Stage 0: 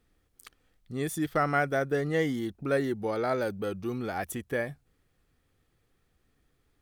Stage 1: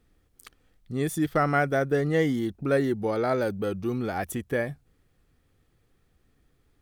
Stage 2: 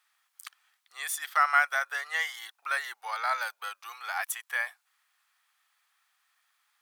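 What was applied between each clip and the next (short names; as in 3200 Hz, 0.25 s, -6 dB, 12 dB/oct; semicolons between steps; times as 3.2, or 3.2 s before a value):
low shelf 480 Hz +4 dB; gain +1.5 dB
steep high-pass 910 Hz 36 dB/oct; gain +4.5 dB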